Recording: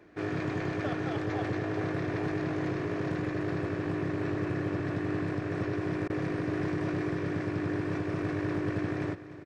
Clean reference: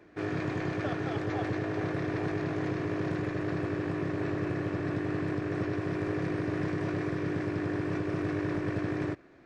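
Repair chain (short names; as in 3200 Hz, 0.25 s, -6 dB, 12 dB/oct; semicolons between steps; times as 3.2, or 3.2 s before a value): clip repair -23.5 dBFS; interpolate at 6.08, 17 ms; inverse comb 0.297 s -14 dB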